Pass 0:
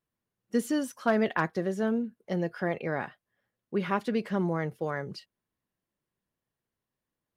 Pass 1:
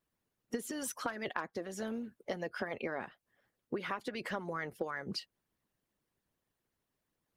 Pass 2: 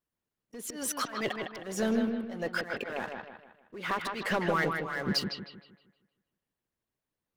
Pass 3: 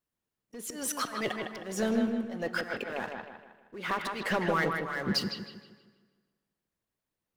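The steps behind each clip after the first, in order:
harmonic and percussive parts rebalanced harmonic −16 dB; downward compressor 16 to 1, threshold −41 dBFS, peak gain reduction 18.5 dB; level +7.5 dB
leveller curve on the samples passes 3; volume swells 274 ms; bucket-brigade delay 156 ms, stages 4,096, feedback 41%, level −5 dB
dense smooth reverb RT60 1.6 s, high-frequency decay 0.8×, DRR 14 dB

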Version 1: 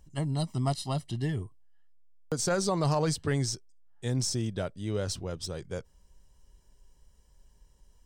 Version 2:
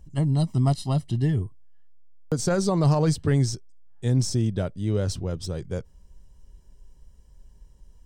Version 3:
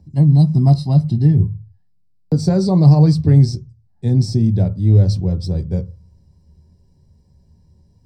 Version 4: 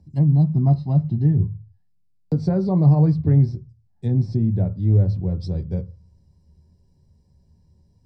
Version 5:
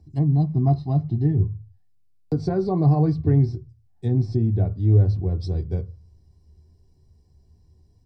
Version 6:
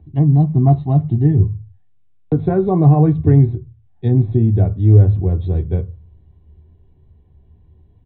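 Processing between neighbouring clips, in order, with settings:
low-shelf EQ 420 Hz +9.5 dB
convolution reverb RT60 0.35 s, pre-delay 3 ms, DRR 8 dB; level −6.5 dB
treble cut that deepens with the level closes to 1,900 Hz, closed at −12 dBFS; level −5 dB
comb filter 2.7 ms, depth 53%
downsampling to 8,000 Hz; level +7 dB

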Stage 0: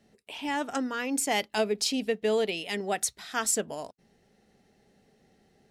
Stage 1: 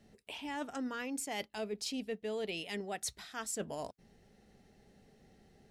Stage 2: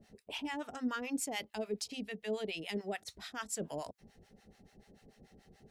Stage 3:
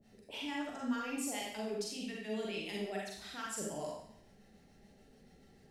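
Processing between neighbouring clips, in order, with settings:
reversed playback; downward compressor 6 to 1, threshold −36 dBFS, peak gain reduction 13.5 dB; reversed playback; low-shelf EQ 100 Hz +10 dB; level −1 dB
brickwall limiter −32 dBFS, peak gain reduction 6.5 dB; two-band tremolo in antiphase 6.9 Hz, depth 100%, crossover 730 Hz; level +6.5 dB
convolution reverb RT60 0.70 s, pre-delay 34 ms, DRR −3.5 dB; level −5.5 dB

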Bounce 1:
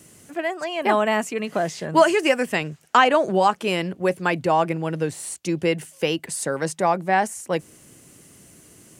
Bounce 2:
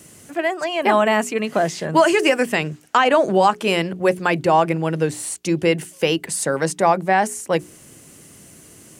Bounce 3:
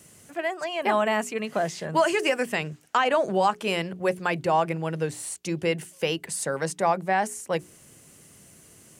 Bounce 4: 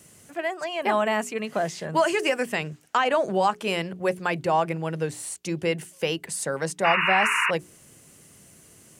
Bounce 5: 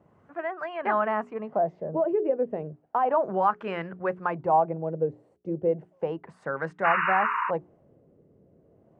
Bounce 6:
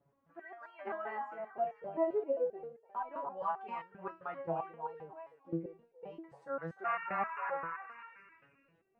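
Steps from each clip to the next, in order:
mains-hum notches 60/120/180/240/300/360/420 Hz; boost into a limiter +8.5 dB; level −4 dB
parametric band 300 Hz −4.5 dB 0.59 octaves; level −6.5 dB
sound drawn into the spectrogram noise, 0:06.84–0:07.51, 900–2,900 Hz −23 dBFS
auto-filter low-pass sine 0.33 Hz 480–1,500 Hz; level −5 dB
echo through a band-pass that steps 299 ms, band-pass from 920 Hz, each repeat 0.7 octaves, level −3.5 dB; step-sequenced resonator 7.6 Hz 140–460 Hz; level −1 dB

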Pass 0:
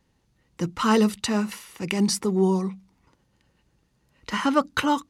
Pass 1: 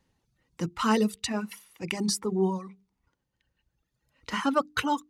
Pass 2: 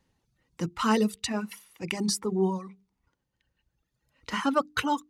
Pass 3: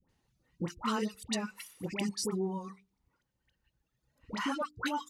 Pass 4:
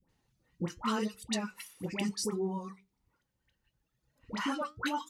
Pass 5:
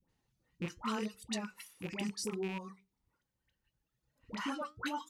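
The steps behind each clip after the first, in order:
mains-hum notches 50/100/150/200/250/300/350/400/450 Hz; reverb reduction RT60 2 s; level −3 dB
no processing that can be heard
downward compressor 5 to 1, threshold −29 dBFS, peak gain reduction 10 dB; all-pass dispersion highs, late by 91 ms, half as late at 930 Hz; level −1.5 dB
flanger 0.75 Hz, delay 5.4 ms, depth 6.1 ms, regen −68%; level +4.5 dB
loose part that buzzes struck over −39 dBFS, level −30 dBFS; level −4.5 dB

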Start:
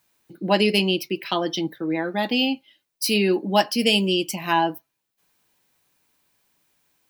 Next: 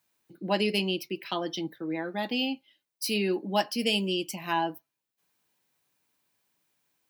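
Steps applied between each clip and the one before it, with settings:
high-pass filter 80 Hz
level −7.5 dB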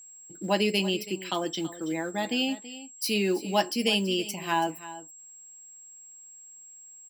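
single-tap delay 329 ms −15.5 dB
floating-point word with a short mantissa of 4 bits
steady tone 7,600 Hz −48 dBFS
level +1.5 dB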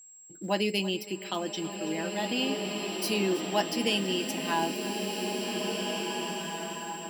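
slow-attack reverb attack 2,170 ms, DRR 1.5 dB
level −3 dB

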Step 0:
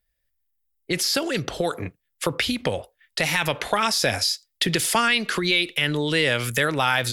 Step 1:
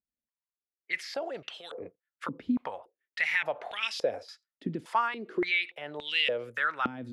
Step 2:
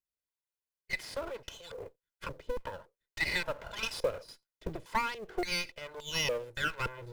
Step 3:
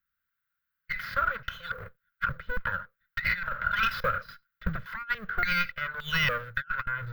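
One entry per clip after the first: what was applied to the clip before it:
band-pass on a step sequencer 3.5 Hz 250–2,800 Hz
lower of the sound and its delayed copy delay 2 ms; in parallel at −4.5 dB: floating-point word with a short mantissa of 2 bits; on the sum: level −6 dB
drawn EQ curve 200 Hz 0 dB, 340 Hz −25 dB, 520 Hz −12 dB, 890 Hz −15 dB, 1,400 Hz +14 dB, 2,500 Hz −5 dB, 3,900 Hz −7 dB, 9,000 Hz −29 dB, 15,000 Hz +3 dB; compressor whose output falls as the input rises −34 dBFS, ratio −0.5; level +6.5 dB

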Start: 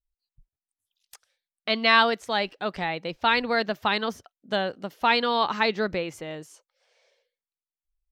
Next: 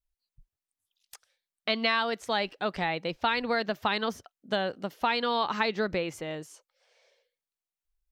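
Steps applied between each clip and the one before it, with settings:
downward compressor 6 to 1, threshold −23 dBFS, peak gain reduction 10 dB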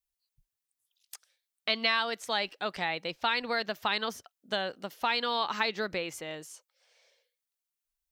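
spectral tilt +2 dB per octave
level −2.5 dB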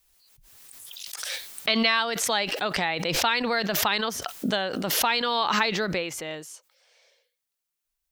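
background raised ahead of every attack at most 27 dB per second
level +4.5 dB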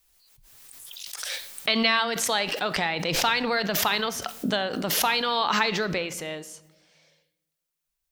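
convolution reverb RT60 1.0 s, pre-delay 7 ms, DRR 13.5 dB

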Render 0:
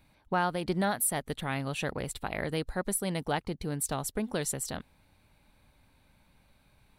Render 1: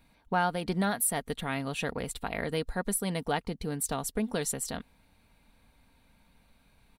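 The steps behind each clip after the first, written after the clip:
comb filter 4.3 ms, depth 37%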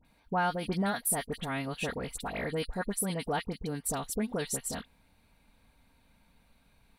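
all-pass dispersion highs, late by 49 ms, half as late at 1,600 Hz
level −1.5 dB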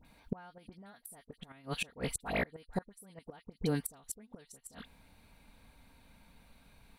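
gate with flip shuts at −25 dBFS, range −28 dB
level +4 dB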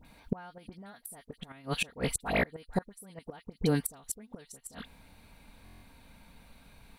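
buffer that repeats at 0:05.64, samples 1,024, times 7
level +5 dB

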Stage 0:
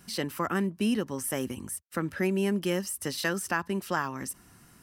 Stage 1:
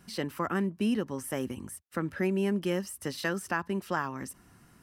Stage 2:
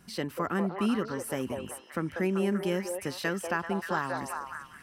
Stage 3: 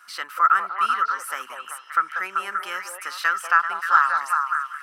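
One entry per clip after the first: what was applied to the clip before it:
high-shelf EQ 3,500 Hz −7 dB; level −1 dB
echo through a band-pass that steps 193 ms, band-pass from 630 Hz, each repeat 0.7 octaves, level −0.5 dB
high-pass with resonance 1,300 Hz, resonance Q 8.1; level +4 dB

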